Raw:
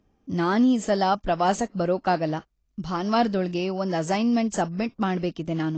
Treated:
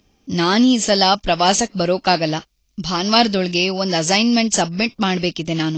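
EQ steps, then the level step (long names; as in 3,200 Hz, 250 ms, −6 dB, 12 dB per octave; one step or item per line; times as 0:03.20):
flat-topped bell 3,600 Hz +8.5 dB
high-shelf EQ 4,800 Hz +11.5 dB
+5.5 dB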